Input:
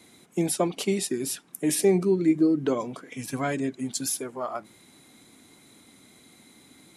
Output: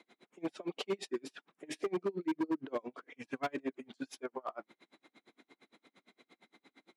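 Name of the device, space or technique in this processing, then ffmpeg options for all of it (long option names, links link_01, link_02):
helicopter radio: -af "highpass=330,lowpass=2900,aeval=exprs='val(0)*pow(10,-37*(0.5-0.5*cos(2*PI*8.7*n/s))/20)':channel_layout=same,asoftclip=type=hard:threshold=-29.5dB,highpass=69,volume=1dB"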